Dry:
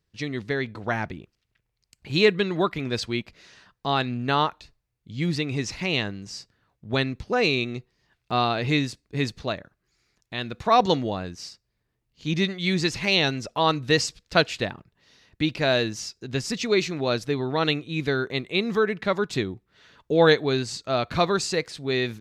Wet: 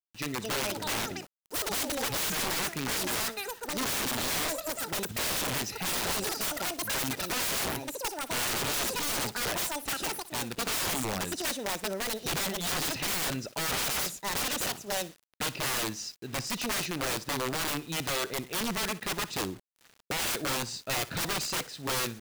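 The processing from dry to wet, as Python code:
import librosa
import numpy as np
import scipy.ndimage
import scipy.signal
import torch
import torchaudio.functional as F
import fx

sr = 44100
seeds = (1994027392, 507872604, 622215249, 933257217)

p1 = fx.echo_pitch(x, sr, ms=299, semitones=7, count=3, db_per_echo=-3.0)
p2 = fx.notch_comb(p1, sr, f0_hz=1100.0)
p3 = (np.mod(10.0 ** (22.5 / 20.0) * p2 + 1.0, 2.0) - 1.0) / 10.0 ** (22.5 / 20.0)
p4 = p3 + fx.echo_feedback(p3, sr, ms=60, feedback_pct=30, wet_db=-18, dry=0)
p5 = fx.quant_dither(p4, sr, seeds[0], bits=8, dither='none')
y = p5 * librosa.db_to_amplitude(-3.0)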